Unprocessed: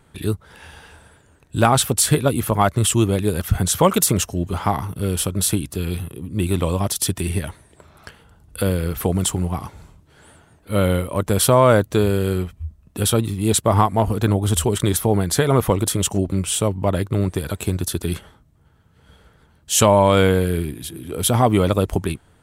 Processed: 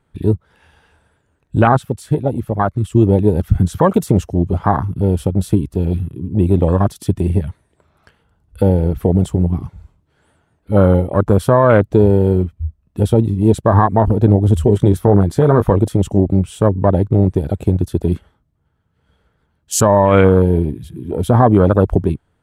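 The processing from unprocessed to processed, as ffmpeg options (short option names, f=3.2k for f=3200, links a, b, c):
-filter_complex "[0:a]asettb=1/sr,asplit=3[a][b][c];[a]atrim=end=14.644[d];[b]atrim=start=14.64:end=15.78,asetpts=PTS-STARTPTS,afade=t=in:d=0.004:c=qsin,afade=t=out:st=1.136:d=0.004:c=qsin,asplit=2[e][f];[f]adelay=20,volume=-10dB[g];[e][g]amix=inputs=2:normalize=0,atrim=end_sample=50274[h];[c]atrim=start=15.776[i];[d][h]acrossfade=d=0.004:c1=hsin:c2=qsin[j];[j][i]acrossfade=d=0.004:c1=qsin:c2=hsin,asplit=3[k][l][m];[k]atrim=end=1.772[n];[l]atrim=start=1.768:end=2.952,asetpts=PTS-STARTPTS,volume=-6.5dB[o];[m]atrim=start=2.948[p];[n][o]acrossfade=d=0.004:c1=hsin:c2=hsin[q];[q][p]acrossfade=d=0.004:c1=hsin:c2=hsin,afwtdn=0.0794,highshelf=f=4.5k:g=-8,alimiter=level_in=8.5dB:limit=-1dB:release=50:level=0:latency=1,volume=-1dB"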